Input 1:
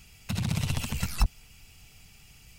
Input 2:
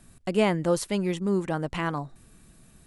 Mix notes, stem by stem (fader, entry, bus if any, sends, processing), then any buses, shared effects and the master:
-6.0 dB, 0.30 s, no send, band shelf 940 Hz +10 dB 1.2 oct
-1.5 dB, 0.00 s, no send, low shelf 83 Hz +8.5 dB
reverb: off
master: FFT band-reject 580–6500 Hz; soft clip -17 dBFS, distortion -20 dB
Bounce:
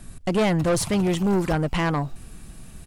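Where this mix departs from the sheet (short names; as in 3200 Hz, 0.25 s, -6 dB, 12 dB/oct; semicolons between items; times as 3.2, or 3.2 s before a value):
stem 2 -1.5 dB -> +8.5 dB; master: missing FFT band-reject 580–6500 Hz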